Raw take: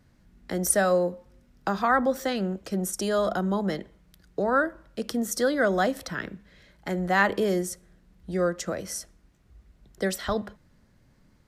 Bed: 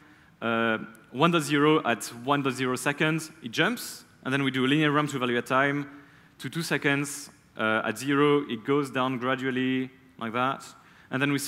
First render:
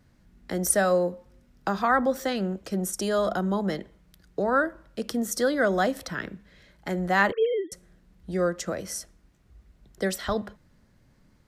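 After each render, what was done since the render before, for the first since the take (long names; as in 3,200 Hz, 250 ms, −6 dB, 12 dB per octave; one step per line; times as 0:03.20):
0:07.32–0:07.72: three sine waves on the formant tracks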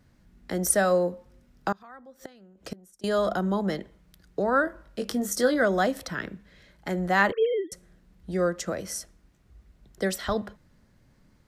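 0:01.72–0:03.04: gate with flip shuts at −22 dBFS, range −25 dB
0:04.65–0:05.63: double-tracking delay 20 ms −6.5 dB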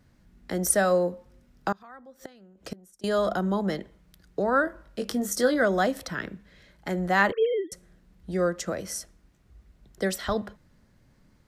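no processing that can be heard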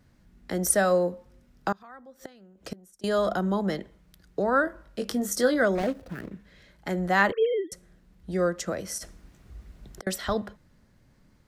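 0:05.75–0:06.32: running median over 41 samples
0:08.98–0:10.07: compressor whose output falls as the input rises −44 dBFS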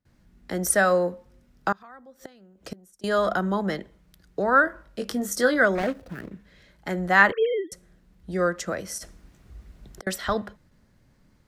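noise gate with hold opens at −52 dBFS
dynamic equaliser 1,600 Hz, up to +7 dB, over −40 dBFS, Q 0.92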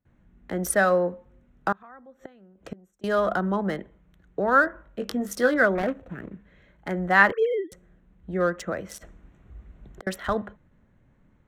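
adaptive Wiener filter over 9 samples
dynamic equaliser 7,700 Hz, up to −5 dB, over −42 dBFS, Q 0.72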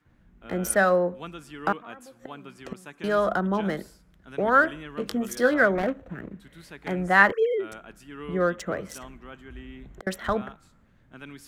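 mix in bed −17.5 dB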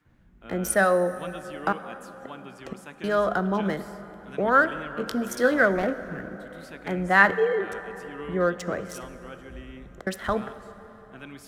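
dense smooth reverb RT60 4.4 s, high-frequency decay 0.55×, DRR 12.5 dB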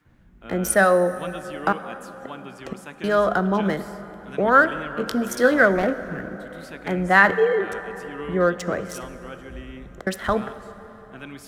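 level +4 dB
brickwall limiter −2 dBFS, peak gain reduction 3 dB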